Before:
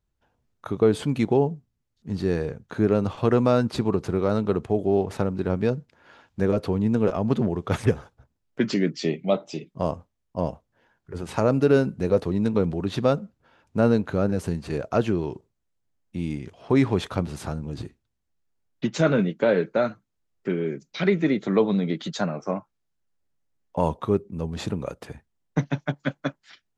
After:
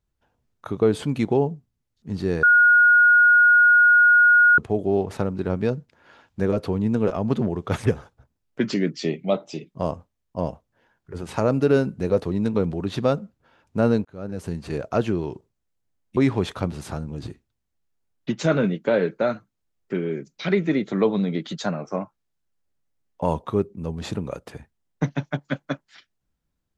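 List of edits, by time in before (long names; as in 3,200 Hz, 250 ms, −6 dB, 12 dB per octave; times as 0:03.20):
0:02.43–0:04.58: beep over 1,440 Hz −11 dBFS
0:14.05–0:14.65: fade in
0:16.17–0:16.72: remove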